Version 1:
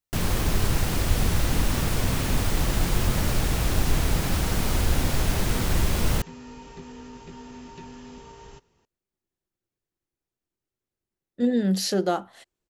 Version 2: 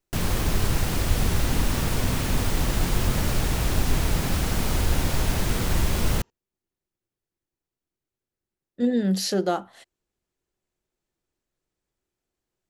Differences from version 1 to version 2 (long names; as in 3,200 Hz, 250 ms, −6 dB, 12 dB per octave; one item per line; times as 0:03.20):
speech: entry −2.60 s
second sound: entry −2.55 s